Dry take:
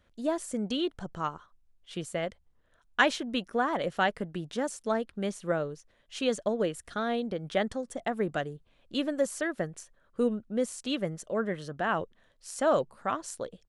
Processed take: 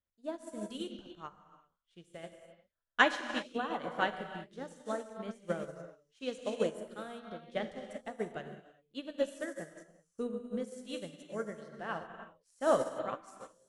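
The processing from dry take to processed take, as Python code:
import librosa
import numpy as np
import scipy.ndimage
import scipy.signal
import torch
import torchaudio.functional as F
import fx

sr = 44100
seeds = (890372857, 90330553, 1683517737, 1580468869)

y = fx.rev_gated(x, sr, seeds[0], gate_ms=410, shape='flat', drr_db=0.5)
y = fx.upward_expand(y, sr, threshold_db=-38.0, expansion=2.5)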